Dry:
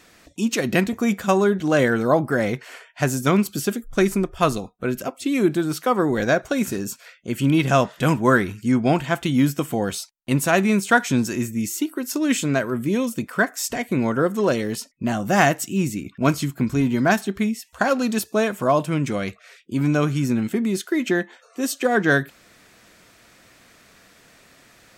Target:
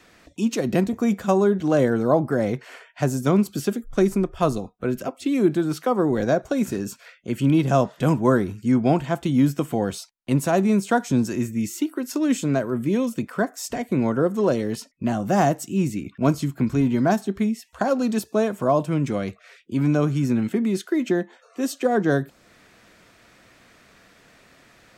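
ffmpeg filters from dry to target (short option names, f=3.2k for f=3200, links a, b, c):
-filter_complex "[0:a]highshelf=f=5.5k:g=-8.5,acrossover=split=240|1100|4100[a][b][c][d];[c]acompressor=threshold=-41dB:ratio=4[e];[a][b][e][d]amix=inputs=4:normalize=0"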